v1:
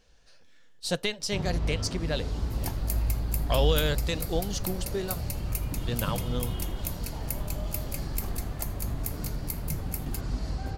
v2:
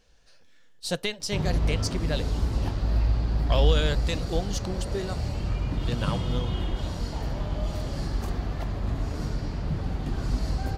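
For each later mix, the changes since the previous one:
first sound +4.5 dB; second sound: muted; reverb: off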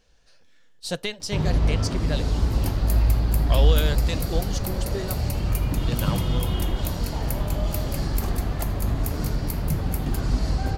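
first sound +4.0 dB; second sound: unmuted; reverb: on, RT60 0.45 s

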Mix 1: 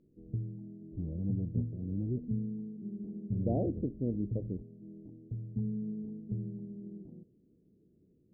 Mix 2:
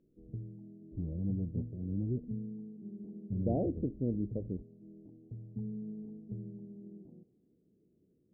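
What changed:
first sound: add tilt EQ +2 dB/octave; second sound: unmuted

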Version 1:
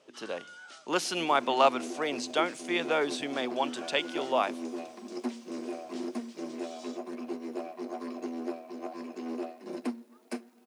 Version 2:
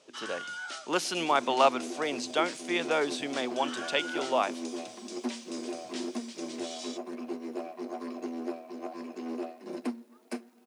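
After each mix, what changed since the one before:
first sound +10.0 dB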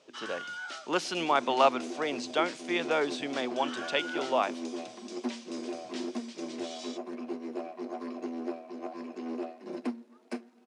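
master: add distance through air 62 m

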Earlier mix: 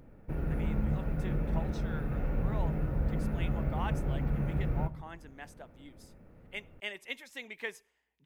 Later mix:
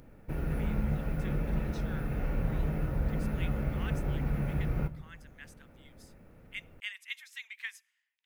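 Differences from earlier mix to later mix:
speech: add high-pass 1.4 kHz 24 dB/octave; background: add treble shelf 2.1 kHz +9 dB

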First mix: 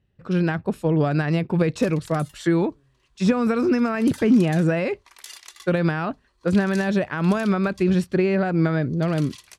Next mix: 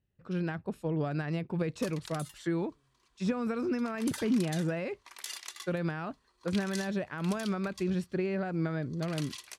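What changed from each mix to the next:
speech -11.5 dB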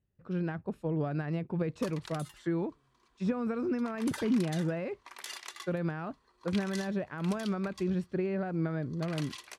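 background +5.5 dB; master: add treble shelf 2.7 kHz -10.5 dB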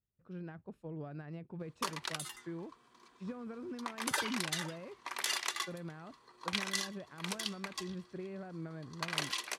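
speech -12.0 dB; background +8.0 dB

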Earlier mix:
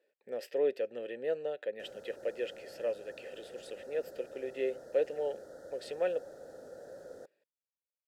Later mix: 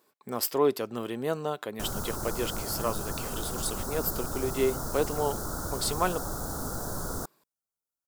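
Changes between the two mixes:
speech -5.0 dB; master: remove vowel filter e

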